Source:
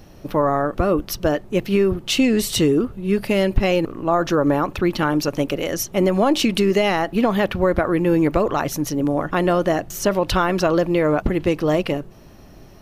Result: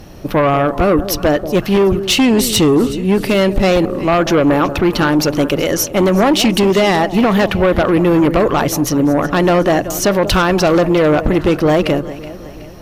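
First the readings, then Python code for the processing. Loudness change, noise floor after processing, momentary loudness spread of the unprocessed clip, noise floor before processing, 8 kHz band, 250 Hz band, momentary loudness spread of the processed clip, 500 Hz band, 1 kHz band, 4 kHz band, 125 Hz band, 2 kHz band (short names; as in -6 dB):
+6.5 dB, -31 dBFS, 5 LU, -44 dBFS, +8.0 dB, +6.5 dB, 4 LU, +6.0 dB, +6.0 dB, +7.5 dB, +6.5 dB, +7.0 dB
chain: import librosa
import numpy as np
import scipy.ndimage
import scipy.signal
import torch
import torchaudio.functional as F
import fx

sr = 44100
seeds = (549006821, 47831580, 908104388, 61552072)

y = fx.echo_alternate(x, sr, ms=186, hz=830.0, feedback_pct=66, wet_db=-14.0)
y = fx.cheby_harmonics(y, sr, harmonics=(5,), levels_db=(-9,), full_scale_db=-4.5)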